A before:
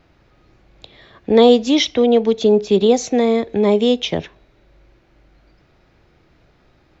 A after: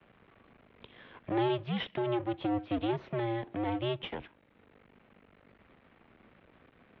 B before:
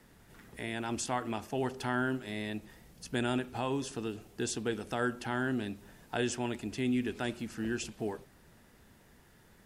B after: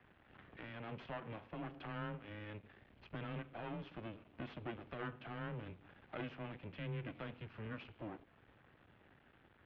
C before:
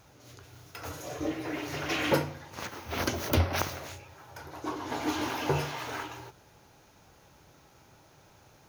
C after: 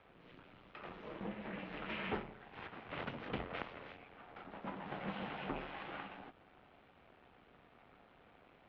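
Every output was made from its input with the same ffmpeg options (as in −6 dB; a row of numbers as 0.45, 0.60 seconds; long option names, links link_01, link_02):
-af "acompressor=threshold=-48dB:ratio=1.5,aeval=exprs='max(val(0),0)':channel_layout=same,highpass=frequency=180:width_type=q:width=0.5412,highpass=frequency=180:width_type=q:width=1.307,lowpass=frequency=3300:width_type=q:width=0.5176,lowpass=frequency=3300:width_type=q:width=0.7071,lowpass=frequency=3300:width_type=q:width=1.932,afreqshift=-110,volume=1dB"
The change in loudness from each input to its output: −18.5, −12.5, −13.0 LU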